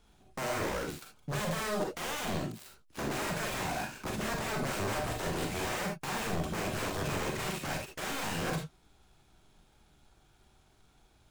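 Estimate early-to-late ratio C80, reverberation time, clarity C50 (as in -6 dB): 16.0 dB, no single decay rate, 5.5 dB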